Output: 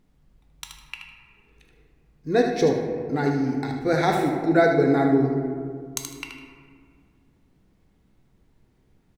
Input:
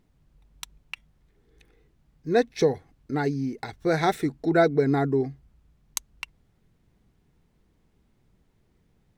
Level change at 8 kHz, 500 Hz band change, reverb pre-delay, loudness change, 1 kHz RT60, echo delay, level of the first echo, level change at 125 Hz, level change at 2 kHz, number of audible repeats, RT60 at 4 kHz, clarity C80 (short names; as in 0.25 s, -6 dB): +1.5 dB, +2.5 dB, 3 ms, +3.0 dB, 1.9 s, 77 ms, -7.0 dB, +2.5 dB, +3.5 dB, 1, 0.95 s, 5.5 dB